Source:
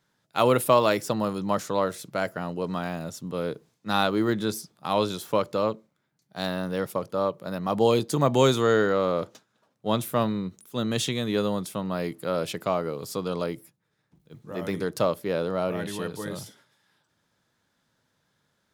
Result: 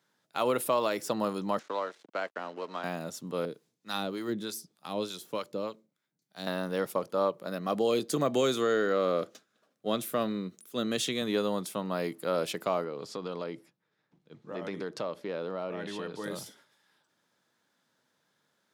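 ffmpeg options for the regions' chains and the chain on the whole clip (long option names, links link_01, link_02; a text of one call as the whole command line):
ffmpeg -i in.wav -filter_complex "[0:a]asettb=1/sr,asplit=3[link_01][link_02][link_03];[link_01]atrim=end=1.594[link_04];[link_02]atrim=start=1.59:end=2.84,asetpts=PTS-STARTPTS,afade=type=in:duration=0.004:curve=qsin,afade=type=out:start_time=1.246:duration=0.004:curve=qsin,acrossover=split=640|3600[link_05][link_06][link_07];[link_05]acompressor=threshold=-34dB:ratio=4[link_08];[link_06]acompressor=threshold=-29dB:ratio=4[link_09];[link_07]acompressor=threshold=-52dB:ratio=4[link_10];[link_08][link_09][link_10]amix=inputs=3:normalize=0,aeval=exprs='sgn(val(0))*max(abs(val(0))-0.00501,0)':channel_layout=same,acrossover=split=230 7400:gain=0.178 1 0.0708[link_11][link_12][link_13];[link_11][link_12][link_13]amix=inputs=3:normalize=0[link_14];[link_03]atrim=start=2.836[link_15];[link_04][link_14]acrossfade=duration=0.004:curve1=hsin:curve2=qsin[link_16];[link_16][link_15]acrossfade=duration=0.004:curve1=qsin:curve2=hsin,asettb=1/sr,asplit=3[link_17][link_18][link_19];[link_17]atrim=end=3.454[link_20];[link_18]atrim=start=3.45:end=6.47,asetpts=PTS-STARTPTS,afade=type=in:duration=0.004:curve=qsin,afade=type=out:start_time=3.016:duration=0.004:curve=qsin,equalizer=frequency=960:width_type=o:width=2.3:gain=-7,acrossover=split=670[link_21][link_22];[link_21]aeval=exprs='val(0)*(1-0.7/2+0.7/2*cos(2*PI*3.3*n/s))':channel_layout=same[link_23];[link_22]aeval=exprs='val(0)*(1-0.7/2-0.7/2*cos(2*PI*3.3*n/s))':channel_layout=same[link_24];[link_23][link_24]amix=inputs=2:normalize=0[link_25];[link_19]atrim=start=6.466[link_26];[link_20][link_25]acrossfade=duration=0.004:curve1=hsin:curve2=qsin[link_27];[link_27][link_26]acrossfade=duration=0.004:curve1=qsin:curve2=hsin,asettb=1/sr,asplit=3[link_28][link_29][link_30];[link_28]atrim=end=7.474[link_31];[link_29]atrim=start=7.47:end=11.22,asetpts=PTS-STARTPTS,afade=type=in:duration=0.004:curve=qsin,afade=type=out:start_time=3.746:duration=0.004:curve=qsin,highpass=100,equalizer=frequency=910:width=6.1:gain=-13[link_32];[link_30]atrim=start=11.216[link_33];[link_31][link_32]acrossfade=duration=0.004:curve1=hsin:curve2=qsin[link_34];[link_34][link_33]acrossfade=duration=0.004:curve1=qsin:curve2=hsin,asettb=1/sr,asplit=3[link_35][link_36][link_37];[link_35]atrim=end=12.844[link_38];[link_36]atrim=start=12.84:end=16.24,asetpts=PTS-STARTPTS,afade=type=in:duration=0.004:curve=qsin,afade=type=out:start_time=3.396:duration=0.004:curve=qsin,lowpass=4900,acompressor=threshold=-30dB:ratio=3:attack=3.2:release=140:knee=1:detection=peak[link_39];[link_37]atrim=start=16.236[link_40];[link_38][link_39]acrossfade=duration=0.004:curve1=hsin:curve2=qsin[link_41];[link_41][link_40]acrossfade=duration=0.004:curve1=qsin:curve2=hsin,highpass=210,alimiter=limit=-15.5dB:level=0:latency=1:release=200,volume=-1.5dB" out.wav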